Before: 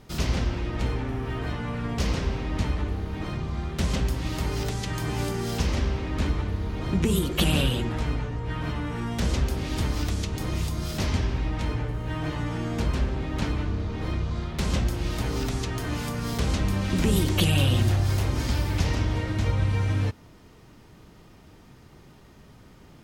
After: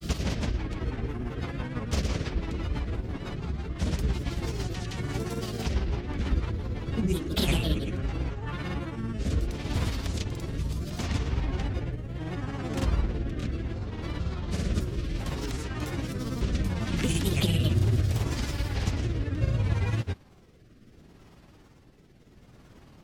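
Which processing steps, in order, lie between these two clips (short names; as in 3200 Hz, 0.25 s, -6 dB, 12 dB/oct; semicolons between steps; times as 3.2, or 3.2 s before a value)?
grains, grains 18/s, pitch spread up and down by 3 st; rotary speaker horn 6 Hz, later 0.7 Hz, at 6.82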